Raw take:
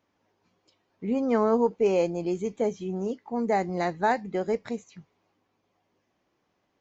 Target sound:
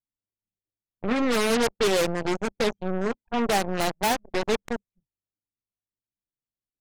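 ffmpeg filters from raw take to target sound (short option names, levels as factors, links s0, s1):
-af "aeval=exprs='0.266*sin(PI/2*2.24*val(0)/0.266)':c=same,aeval=exprs='0.266*(cos(1*acos(clip(val(0)/0.266,-1,1)))-cos(1*PI/2))+0.0422*(cos(3*acos(clip(val(0)/0.266,-1,1)))-cos(3*PI/2))+0.106*(cos(6*acos(clip(val(0)/0.266,-1,1)))-cos(6*PI/2))+0.0335*(cos(7*acos(clip(val(0)/0.266,-1,1)))-cos(7*PI/2))+0.0596*(cos(8*acos(clip(val(0)/0.266,-1,1)))-cos(8*PI/2))':c=same,anlmdn=100,volume=0.398"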